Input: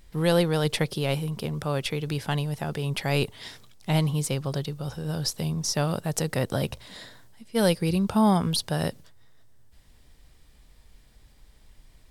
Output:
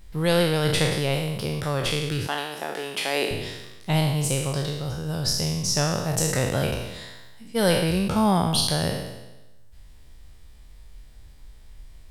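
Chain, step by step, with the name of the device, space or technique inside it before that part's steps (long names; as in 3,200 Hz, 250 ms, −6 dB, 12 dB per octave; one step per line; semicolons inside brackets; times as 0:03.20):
peak hold with a decay on every bin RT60 1.05 s
low shelf boost with a cut just above (low-shelf EQ 110 Hz +6 dB; parametric band 220 Hz −2.5 dB 1 octave)
0:02.27–0:03.31: high-pass filter 270 Hz 24 dB per octave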